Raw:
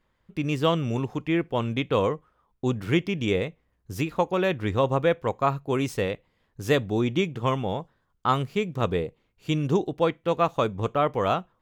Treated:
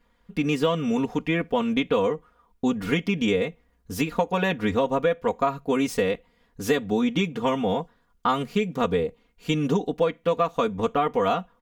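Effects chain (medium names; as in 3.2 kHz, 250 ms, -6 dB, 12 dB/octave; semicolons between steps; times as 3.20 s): comb 4.2 ms, depth 96%; compression 5:1, threshold -22 dBFS, peak gain reduction 9.5 dB; trim +3 dB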